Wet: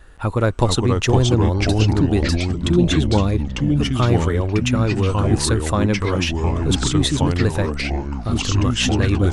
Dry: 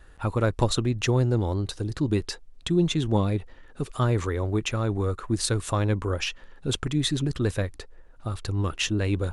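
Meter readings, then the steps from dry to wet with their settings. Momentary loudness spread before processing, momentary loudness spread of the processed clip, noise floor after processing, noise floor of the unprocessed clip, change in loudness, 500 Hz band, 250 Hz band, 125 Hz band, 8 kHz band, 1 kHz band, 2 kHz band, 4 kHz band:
9 LU, 4 LU, -28 dBFS, -50 dBFS, +8.0 dB, +7.0 dB, +8.5 dB, +8.0 dB, +7.0 dB, +8.5 dB, +8.5 dB, +7.5 dB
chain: echoes that change speed 0.394 s, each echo -3 st, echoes 3; gain +5.5 dB

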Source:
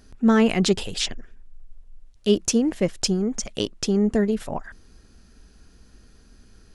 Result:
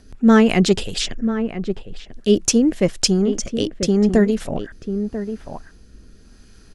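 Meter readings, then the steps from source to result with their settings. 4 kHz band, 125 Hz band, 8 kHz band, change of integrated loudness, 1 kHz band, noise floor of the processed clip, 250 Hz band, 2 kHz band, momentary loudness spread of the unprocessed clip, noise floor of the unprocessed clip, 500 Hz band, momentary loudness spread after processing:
+3.5 dB, +5.5 dB, +5.0 dB, +4.0 dB, +4.5 dB, -47 dBFS, +5.5 dB, +5.0 dB, 10 LU, -53 dBFS, +5.0 dB, 14 LU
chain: outdoor echo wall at 170 m, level -9 dB; rotary speaker horn 5 Hz, later 0.85 Hz, at 1.95; gain +6.5 dB

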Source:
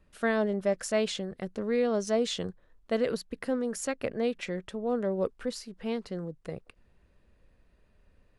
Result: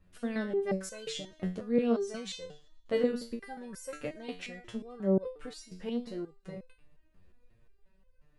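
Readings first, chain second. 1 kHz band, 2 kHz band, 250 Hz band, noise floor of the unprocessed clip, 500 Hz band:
-7.5 dB, -7.0 dB, -1.5 dB, -65 dBFS, -4.0 dB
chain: low shelf 210 Hz +6.5 dB; thin delay 0.11 s, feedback 44%, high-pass 1900 Hz, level -20.5 dB; stepped resonator 5.6 Hz 91–510 Hz; gain +7 dB

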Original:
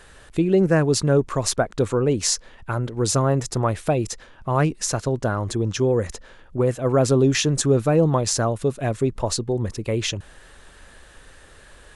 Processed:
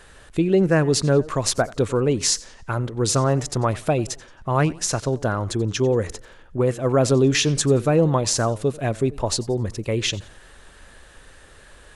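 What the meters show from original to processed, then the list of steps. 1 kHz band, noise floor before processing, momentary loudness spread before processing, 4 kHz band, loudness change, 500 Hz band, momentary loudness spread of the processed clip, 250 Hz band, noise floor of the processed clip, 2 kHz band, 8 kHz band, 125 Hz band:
+0.5 dB, -48 dBFS, 8 LU, +2.0 dB, +0.5 dB, 0.0 dB, 8 LU, 0.0 dB, -48 dBFS, +1.5 dB, +1.0 dB, 0.0 dB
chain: dynamic EQ 3100 Hz, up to +3 dB, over -37 dBFS, Q 0.81; warbling echo 90 ms, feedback 36%, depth 155 cents, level -21 dB

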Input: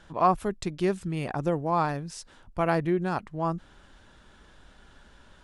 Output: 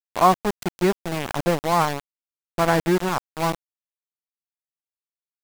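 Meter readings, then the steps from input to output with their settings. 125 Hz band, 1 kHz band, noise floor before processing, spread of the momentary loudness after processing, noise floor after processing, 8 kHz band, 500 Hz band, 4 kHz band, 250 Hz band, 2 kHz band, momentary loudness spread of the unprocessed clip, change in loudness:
+3.0 dB, +6.0 dB, -56 dBFS, 9 LU, under -85 dBFS, +11.0 dB, +5.0 dB, +12.0 dB, +4.0 dB, +8.0 dB, 13 LU, +5.5 dB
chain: Wiener smoothing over 9 samples; sample gate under -27 dBFS; gain +6 dB

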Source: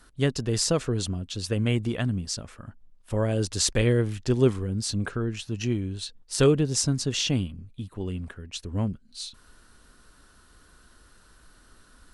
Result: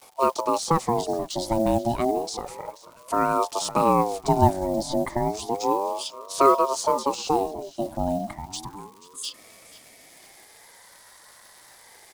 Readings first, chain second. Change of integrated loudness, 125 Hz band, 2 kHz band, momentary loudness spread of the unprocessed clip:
+2.0 dB, -6.5 dB, -3.5 dB, 14 LU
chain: gate with hold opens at -47 dBFS; spectral gain 8.75–9.23, 460–6900 Hz -29 dB; de-esser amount 90%; high-pass sweep 60 Hz -> 1000 Hz, 7.56–8.95; modulation noise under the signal 32 dB; in parallel at 0 dB: compressor, threshold -33 dBFS, peak gain reduction 18 dB; on the sum: Butterworth band-stop 2600 Hz, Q 1.4; low shelf 150 Hz -11 dB; crackle 440/s -46 dBFS; bell 1100 Hz -9 dB 1.6 oct; on a send: frequency-shifting echo 0.484 s, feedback 33%, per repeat +37 Hz, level -18 dB; on the sum: ring modulator with a swept carrier 630 Hz, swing 30%, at 0.31 Hz; gain +7.5 dB

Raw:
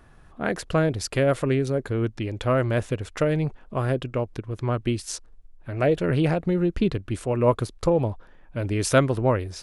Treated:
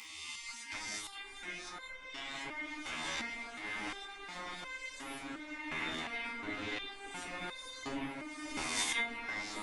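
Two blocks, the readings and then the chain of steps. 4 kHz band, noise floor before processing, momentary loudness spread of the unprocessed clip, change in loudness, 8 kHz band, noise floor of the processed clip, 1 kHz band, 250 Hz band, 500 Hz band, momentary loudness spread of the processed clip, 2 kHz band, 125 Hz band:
-2.5 dB, -51 dBFS, 9 LU, -15.0 dB, -6.5 dB, -50 dBFS, -12.5 dB, -20.0 dB, -26.5 dB, 8 LU, -4.5 dB, -33.5 dB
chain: spectral swells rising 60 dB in 1.02 s; LPF 8500 Hz 12 dB/oct; spectral gate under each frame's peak -20 dB weak; gate -29 dBFS, range -10 dB; upward compressor, threshold -29 dBFS; small resonant body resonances 280/2100/3600 Hz, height 15 dB, ringing for 65 ms; on a send: repeats that get brighter 0.591 s, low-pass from 750 Hz, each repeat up 1 oct, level 0 dB; on the sum: stepped resonator 2.8 Hz 80–520 Hz; gain +5 dB

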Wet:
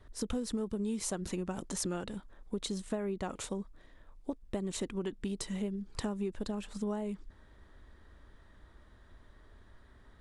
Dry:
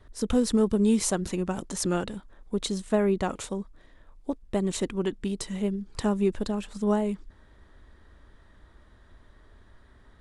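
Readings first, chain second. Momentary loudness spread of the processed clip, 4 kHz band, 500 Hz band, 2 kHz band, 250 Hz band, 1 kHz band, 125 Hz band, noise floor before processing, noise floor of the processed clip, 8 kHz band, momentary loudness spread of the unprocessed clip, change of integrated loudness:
7 LU, -6.5 dB, -10.5 dB, -8.5 dB, -10.0 dB, -10.0 dB, -8.5 dB, -56 dBFS, -60 dBFS, -6.5 dB, 13 LU, -9.5 dB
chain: compressor 6:1, threshold -29 dBFS, peak gain reduction 11 dB; gain -3 dB

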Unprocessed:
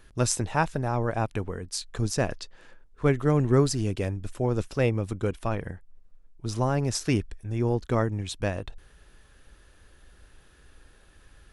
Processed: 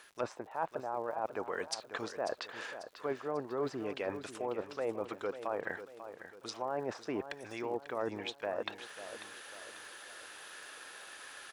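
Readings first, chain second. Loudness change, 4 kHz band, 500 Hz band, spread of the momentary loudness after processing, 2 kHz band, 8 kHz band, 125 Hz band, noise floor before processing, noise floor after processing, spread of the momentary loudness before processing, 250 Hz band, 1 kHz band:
-12.5 dB, -7.0 dB, -7.5 dB, 10 LU, -6.0 dB, -15.5 dB, -27.5 dB, -57 dBFS, -57 dBFS, 11 LU, -14.0 dB, -6.5 dB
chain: HPF 690 Hz 12 dB/oct; treble ducked by the level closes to 900 Hz, closed at -31.5 dBFS; reverse; compressor 5:1, threshold -47 dBFS, peak gain reduction 20.5 dB; reverse; crackle 150/s -65 dBFS; on a send: feedback echo 0.543 s, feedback 43%, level -11.5 dB; on the sum: gain +12.5 dB

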